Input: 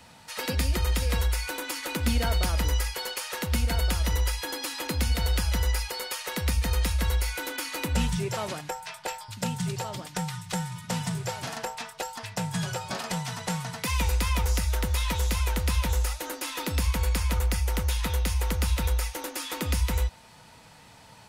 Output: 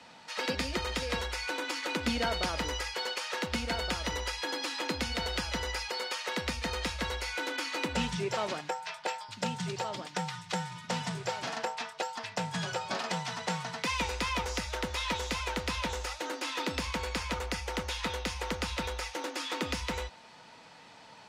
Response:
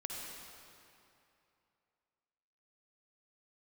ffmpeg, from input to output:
-filter_complex "[0:a]acrossover=split=190 6800:gain=0.158 1 0.0891[a][b][c];[a][b][c]amix=inputs=3:normalize=0"

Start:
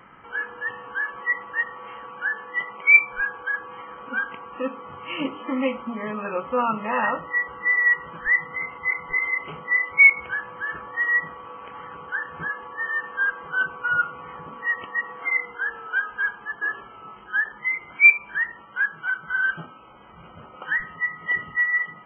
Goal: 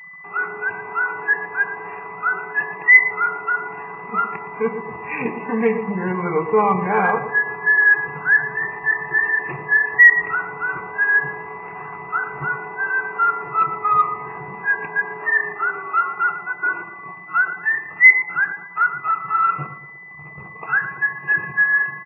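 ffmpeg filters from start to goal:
-filter_complex "[0:a]anlmdn=0.1,adynamicequalizer=threshold=0.00794:dfrequency=490:dqfactor=1.3:tfrequency=490:tqfactor=1.3:attack=5:release=100:ratio=0.375:range=3:mode=boostabove:tftype=bell,asplit=2[a][b];[b]adelay=115,lowpass=f=1.6k:p=1,volume=-10dB,asplit=2[c][d];[d]adelay=115,lowpass=f=1.6k:p=1,volume=0.43,asplit=2[e][f];[f]adelay=115,lowpass=f=1.6k:p=1,volume=0.43,asplit=2[g][h];[h]adelay=115,lowpass=f=1.6k:p=1,volume=0.43,asplit=2[i][j];[j]adelay=115,lowpass=f=1.6k:p=1,volume=0.43[k];[a][c][e][g][i][k]amix=inputs=6:normalize=0,asplit=2[l][m];[m]acontrast=76,volume=2dB[n];[l][n]amix=inputs=2:normalize=0,asetrate=38170,aresample=44100,atempo=1.15535,aeval=exprs='val(0)+0.0282*sin(2*PI*2000*n/s)':c=same,highpass=110,equalizer=f=160:t=q:w=4:g=7,equalizer=f=260:t=q:w=4:g=-10,equalizer=f=560:t=q:w=4:g=-9,lowpass=f=2.9k:w=0.5412,lowpass=f=2.9k:w=1.3066,volume=-6dB"

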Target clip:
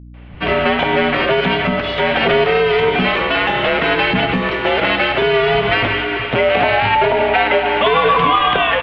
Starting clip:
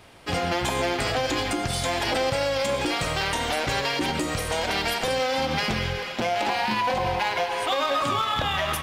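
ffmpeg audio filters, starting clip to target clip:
-filter_complex "[0:a]aemphasis=mode=production:type=50kf,dynaudnorm=f=170:g=3:m=9.5dB,acrossover=split=180[a][b];[b]adelay=140[c];[a][c]amix=inputs=2:normalize=0,highpass=f=200:t=q:w=0.5412,highpass=f=200:t=q:w=1.307,lowpass=f=3.1k:t=q:w=0.5176,lowpass=f=3.1k:t=q:w=0.7071,lowpass=f=3.1k:t=q:w=1.932,afreqshift=-110,aeval=exprs='val(0)+0.0126*(sin(2*PI*60*n/s)+sin(2*PI*2*60*n/s)/2+sin(2*PI*3*60*n/s)/3+sin(2*PI*4*60*n/s)/4+sin(2*PI*5*60*n/s)/5)':c=same,volume=2.5dB"

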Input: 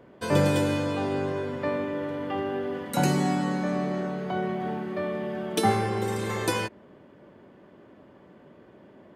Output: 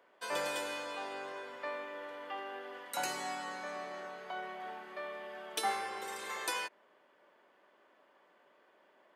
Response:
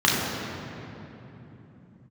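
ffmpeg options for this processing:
-af "highpass=820,volume=-5.5dB"

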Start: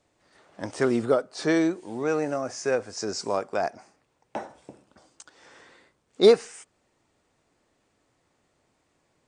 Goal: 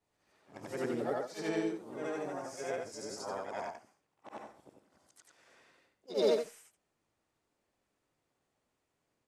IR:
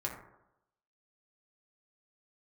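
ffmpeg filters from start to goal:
-filter_complex "[0:a]afftfilt=real='re':imag='-im':win_size=8192:overlap=0.75,asplit=2[a][b];[b]asetrate=58866,aresample=44100,atempo=0.749154,volume=-4dB[c];[a][c]amix=inputs=2:normalize=0,volume=-8.5dB"

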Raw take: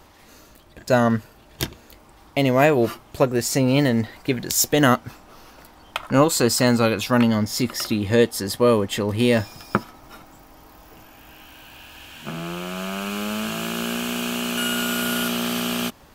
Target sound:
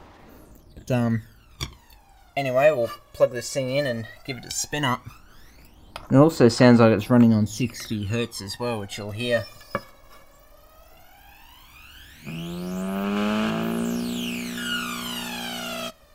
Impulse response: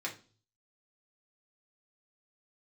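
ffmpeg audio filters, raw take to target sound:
-filter_complex "[0:a]acrossover=split=8400[a][b];[b]acompressor=threshold=-41dB:ratio=4:attack=1:release=60[c];[a][c]amix=inputs=2:normalize=0,aphaser=in_gain=1:out_gain=1:delay=1.8:decay=0.76:speed=0.15:type=sinusoidal,asplit=2[d][e];[1:a]atrim=start_sample=2205,adelay=22[f];[e][f]afir=irnorm=-1:irlink=0,volume=-22dB[g];[d][g]amix=inputs=2:normalize=0,volume=-8dB"

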